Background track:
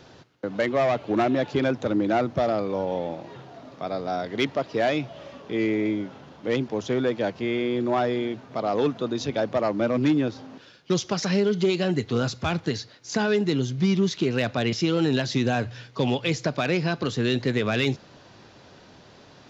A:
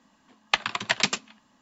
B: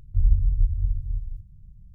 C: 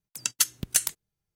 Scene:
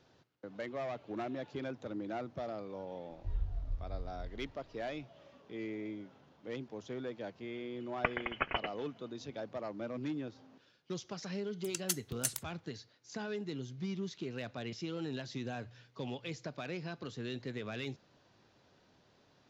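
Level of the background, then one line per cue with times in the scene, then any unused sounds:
background track −17 dB
0:03.10: mix in B −17 dB
0:07.51: mix in A −8.5 dB + voice inversion scrambler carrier 3,200 Hz
0:11.49: mix in C −11.5 dB

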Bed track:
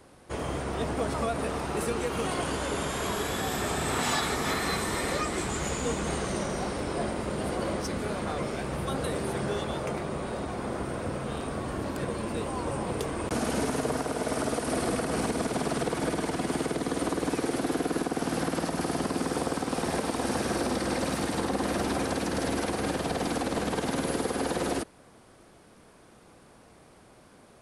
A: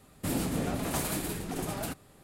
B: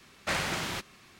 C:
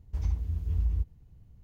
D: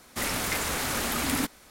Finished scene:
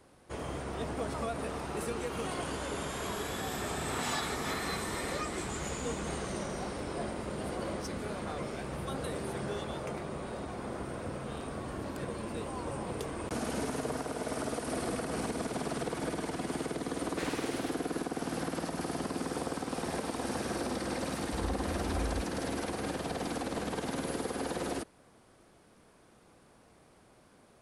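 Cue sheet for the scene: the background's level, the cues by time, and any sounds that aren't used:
bed track −6 dB
0:16.90: mix in B −10.5 dB
0:21.19: mix in C −8.5 dB
not used: A, D

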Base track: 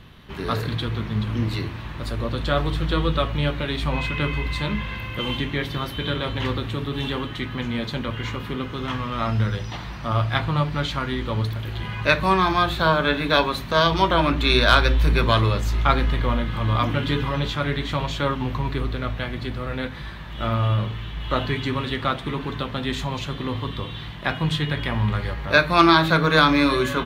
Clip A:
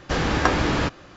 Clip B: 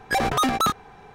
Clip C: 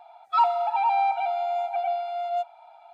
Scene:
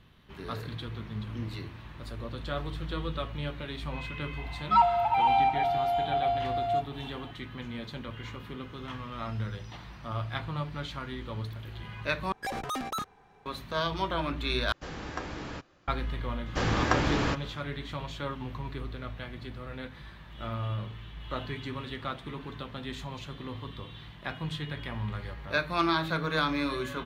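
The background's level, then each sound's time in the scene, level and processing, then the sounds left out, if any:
base track −12 dB
0:04.38: mix in C −1 dB
0:12.32: overwrite with B −12.5 dB
0:14.72: overwrite with A −17 dB
0:16.46: mix in A −6 dB

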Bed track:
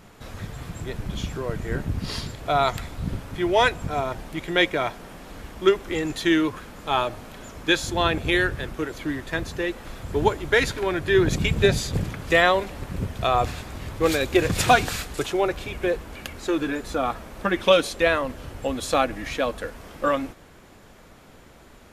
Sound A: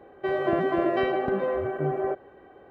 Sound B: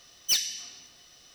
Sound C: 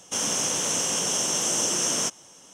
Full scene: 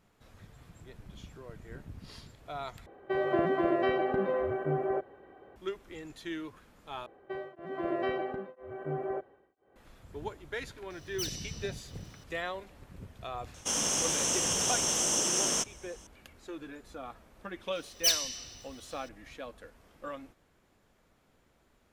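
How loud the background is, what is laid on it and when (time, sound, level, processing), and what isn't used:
bed track −18.5 dB
0:02.86: overwrite with A −3.5 dB
0:07.06: overwrite with A −7 dB + tremolo along a rectified sine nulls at 1 Hz
0:10.90: mix in B −4.5 dB + downward compressor 1.5 to 1, threshold −42 dBFS
0:13.54: mix in C −4 dB
0:17.75: mix in B −1 dB

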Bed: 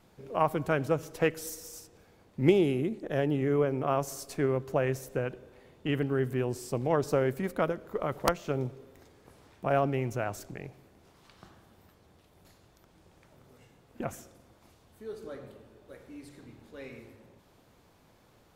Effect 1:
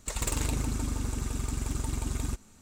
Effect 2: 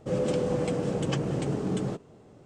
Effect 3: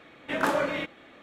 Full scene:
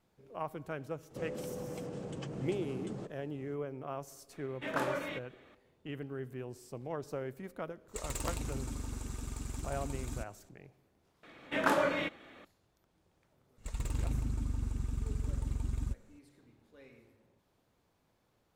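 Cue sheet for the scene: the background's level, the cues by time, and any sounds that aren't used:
bed −12.5 dB
0:01.10: mix in 2 −5.5 dB + downward compressor 4 to 1, threshold −33 dBFS
0:04.33: mix in 3 −9 dB
0:07.88: mix in 1 −8.5 dB
0:11.23: mix in 3 −3 dB
0:13.58: mix in 1 −12.5 dB + bass and treble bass +10 dB, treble −5 dB

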